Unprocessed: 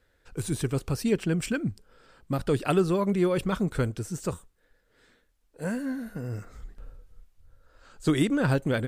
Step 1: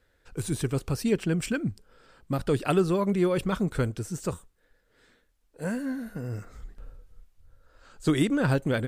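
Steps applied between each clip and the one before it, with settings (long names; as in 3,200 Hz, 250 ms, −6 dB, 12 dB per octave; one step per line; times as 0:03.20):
no processing that can be heard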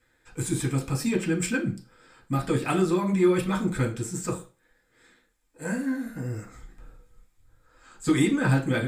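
in parallel at −8.5 dB: soft clipping −21 dBFS, distortion −14 dB
on the sum: convolution reverb RT60 0.35 s, pre-delay 3 ms, DRR −3.5 dB
level −4.5 dB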